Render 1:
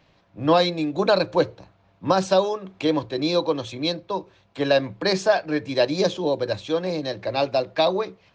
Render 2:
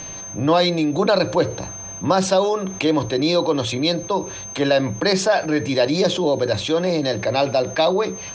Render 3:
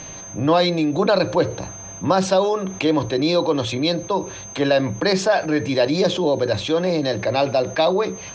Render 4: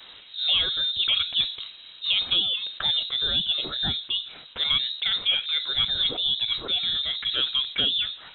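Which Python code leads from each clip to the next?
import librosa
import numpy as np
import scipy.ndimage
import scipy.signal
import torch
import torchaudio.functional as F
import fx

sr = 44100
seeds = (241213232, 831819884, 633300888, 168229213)

y1 = x + 10.0 ** (-52.0 / 20.0) * np.sin(2.0 * np.pi * 6300.0 * np.arange(len(x)) / sr)
y1 = fx.env_flatten(y1, sr, amount_pct=50)
y2 = fx.high_shelf(y1, sr, hz=7900.0, db=-9.0)
y3 = fx.vibrato(y2, sr, rate_hz=2.0, depth_cents=91.0)
y3 = fx.freq_invert(y3, sr, carrier_hz=3900)
y3 = y3 * librosa.db_to_amplitude(-6.5)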